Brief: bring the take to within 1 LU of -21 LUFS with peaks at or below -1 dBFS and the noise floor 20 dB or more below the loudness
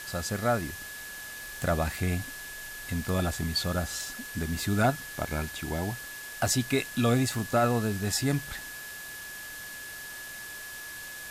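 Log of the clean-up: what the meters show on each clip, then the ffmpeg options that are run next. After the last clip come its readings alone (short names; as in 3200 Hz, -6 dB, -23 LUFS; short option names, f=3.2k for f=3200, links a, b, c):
steady tone 1700 Hz; tone level -41 dBFS; noise floor -42 dBFS; noise floor target -51 dBFS; loudness -31.0 LUFS; peak -14.5 dBFS; loudness target -21.0 LUFS
-> -af "bandreject=f=1.7k:w=30"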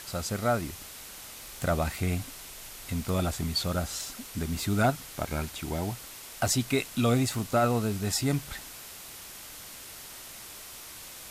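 steady tone none; noise floor -45 dBFS; noise floor target -50 dBFS
-> -af "afftdn=nr=6:nf=-45"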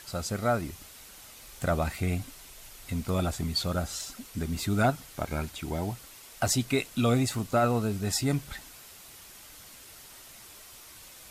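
noise floor -50 dBFS; loudness -29.5 LUFS; peak -15.0 dBFS; loudness target -21.0 LUFS
-> -af "volume=8.5dB"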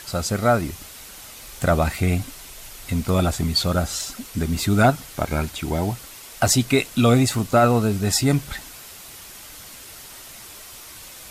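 loudness -21.0 LUFS; peak -6.5 dBFS; noise floor -41 dBFS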